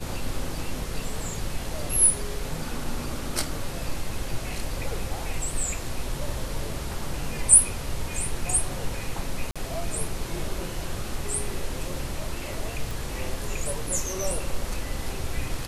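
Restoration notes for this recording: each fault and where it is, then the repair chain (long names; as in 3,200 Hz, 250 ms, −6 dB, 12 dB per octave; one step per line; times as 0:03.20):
0:09.51–0:09.56: drop-out 46 ms
0:12.91: click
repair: click removal
repair the gap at 0:09.51, 46 ms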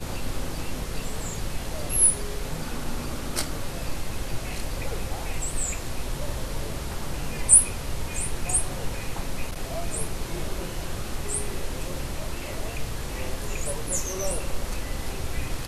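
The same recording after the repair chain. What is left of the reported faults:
none of them is left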